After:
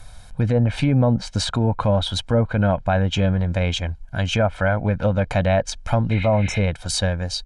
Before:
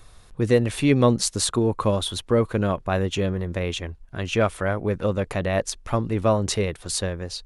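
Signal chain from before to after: spectral replace 6.14–6.56 s, 1.4–5.2 kHz after; low-pass that closes with the level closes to 1.2 kHz, closed at -15 dBFS; comb 1.3 ms, depth 75%; peak limiter -13.5 dBFS, peak gain reduction 7 dB; trim +4 dB

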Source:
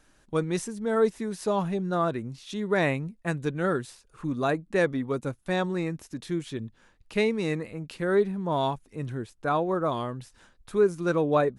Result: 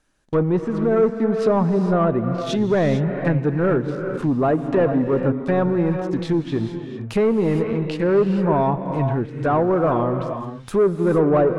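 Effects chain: waveshaping leveller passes 3; low-pass that closes with the level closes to 1.1 kHz, closed at -17 dBFS; gated-style reverb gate 480 ms rising, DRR 6 dB

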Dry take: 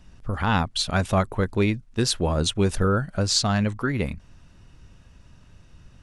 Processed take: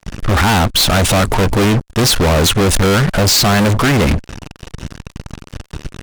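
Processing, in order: fuzz box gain 42 dB, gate -45 dBFS; gate -44 dBFS, range -13 dB; trim +2.5 dB

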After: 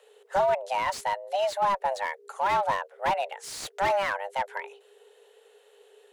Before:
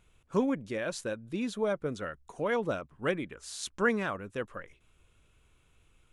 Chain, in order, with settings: frequency shift +400 Hz; Chebyshev shaper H 5 -12 dB, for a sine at -13 dBFS; slew-rate limiter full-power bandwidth 96 Hz

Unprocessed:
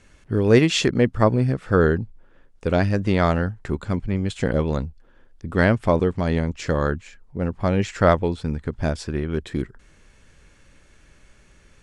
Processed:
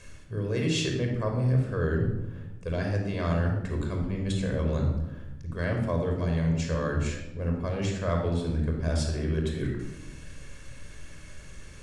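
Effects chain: treble shelf 4.3 kHz +7.5 dB; reverse; compression 6:1, threshold -32 dBFS, peak gain reduction 20.5 dB; reverse; simulated room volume 3800 m³, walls furnished, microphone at 5.4 m

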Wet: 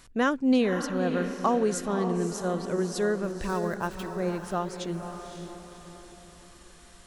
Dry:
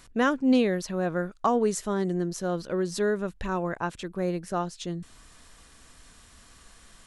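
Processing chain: 3.23–4.20 s: dead-time distortion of 0.051 ms; echo that smears into a reverb 545 ms, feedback 45%, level -8 dB; trim -1 dB

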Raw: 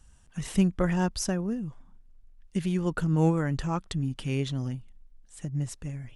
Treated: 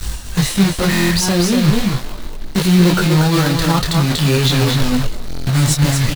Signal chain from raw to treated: block-companded coder 3-bit; peaking EQ 4.1 kHz +7.5 dB 0.44 oct; reverse; compression 4:1, threshold -41 dBFS, peak gain reduction 20 dB; reverse; delay 239 ms -5 dB; loudness maximiser +35 dB; buffer glitch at 0.90/5.26 s, samples 1024, times 8; detune thickener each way 14 cents; trim -1 dB

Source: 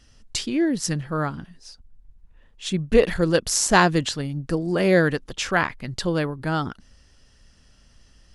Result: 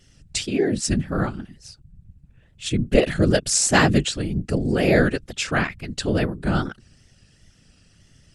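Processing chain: wow and flutter 69 cents; graphic EQ with 31 bands 160 Hz +6 dB, 1 kHz -10 dB, 2.5 kHz +4 dB, 8 kHz +6 dB; whisper effect

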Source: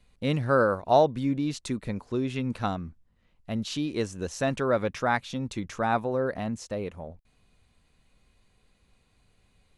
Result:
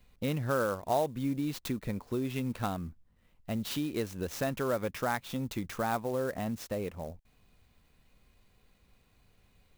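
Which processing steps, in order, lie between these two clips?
compression 2:1, threshold -32 dBFS, peak gain reduction 9.5 dB; sampling jitter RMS 0.028 ms

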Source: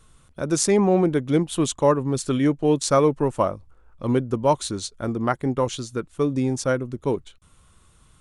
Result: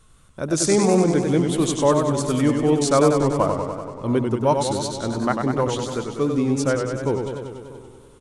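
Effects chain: echo from a far wall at 110 m, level -20 dB; modulated delay 96 ms, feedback 71%, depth 109 cents, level -5.5 dB

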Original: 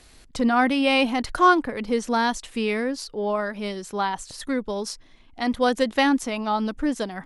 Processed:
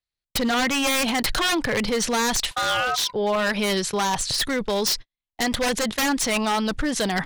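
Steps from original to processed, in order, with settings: in parallel at +0.5 dB: compressor with a negative ratio -31 dBFS, ratio -1; 2.51–3.13 s: on the sum: ring modulator 1 kHz; graphic EQ 125/250/2000/4000 Hz +7/-6/+4/+8 dB; wavefolder -16.5 dBFS; gate -28 dBFS, range -53 dB

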